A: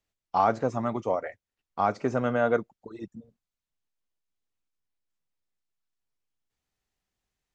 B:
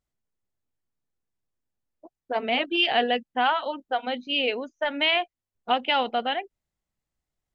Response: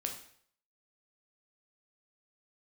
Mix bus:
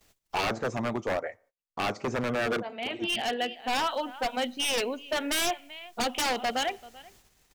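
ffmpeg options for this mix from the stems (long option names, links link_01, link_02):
-filter_complex "[0:a]equalizer=frequency=500:width=0.49:gain=2.5,acompressor=mode=upward:threshold=-37dB:ratio=2.5,volume=-2dB,asplit=3[link_01][link_02][link_03];[link_02]volume=-20.5dB[link_04];[1:a]adelay=300,volume=-1dB,asplit=3[link_05][link_06][link_07];[link_06]volume=-18dB[link_08];[link_07]volume=-22dB[link_09];[link_03]apad=whole_len=345825[link_10];[link_05][link_10]sidechaincompress=threshold=-36dB:ratio=4:attack=12:release=1070[link_11];[2:a]atrim=start_sample=2205[link_12];[link_04][link_08]amix=inputs=2:normalize=0[link_13];[link_13][link_12]afir=irnorm=-1:irlink=0[link_14];[link_09]aecho=0:1:386:1[link_15];[link_01][link_11][link_14][link_15]amix=inputs=4:normalize=0,agate=range=-25dB:threshold=-58dB:ratio=16:detection=peak,highshelf=frequency=4500:gain=6.5,aeval=exprs='0.0794*(abs(mod(val(0)/0.0794+3,4)-2)-1)':channel_layout=same"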